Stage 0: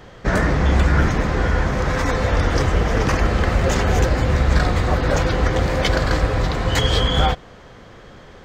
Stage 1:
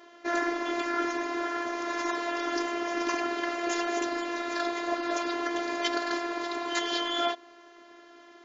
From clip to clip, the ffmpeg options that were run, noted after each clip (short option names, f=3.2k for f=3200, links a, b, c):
-af "afftfilt=real='re*between(b*sr/4096,220,7400)':imag='im*between(b*sr/4096,220,7400)':win_size=4096:overlap=0.75,afftfilt=real='hypot(re,im)*cos(PI*b)':imag='0':win_size=512:overlap=0.75,volume=-4dB"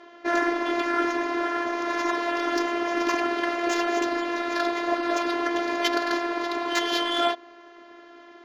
-af "adynamicsmooth=sensitivity=3:basefreq=4.8k,volume=5dB"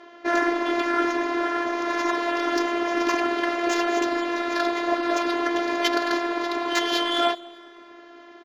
-af "aecho=1:1:200|400|600:0.0668|0.0348|0.0181,volume=1.5dB"